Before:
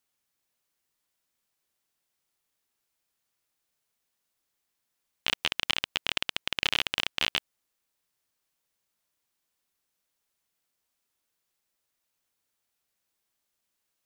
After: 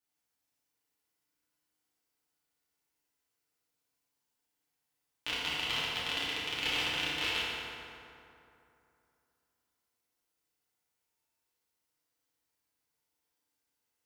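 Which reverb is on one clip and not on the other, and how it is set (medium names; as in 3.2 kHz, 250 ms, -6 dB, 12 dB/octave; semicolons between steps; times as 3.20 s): FDN reverb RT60 2.8 s, high-frequency decay 0.55×, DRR -9 dB; trim -11.5 dB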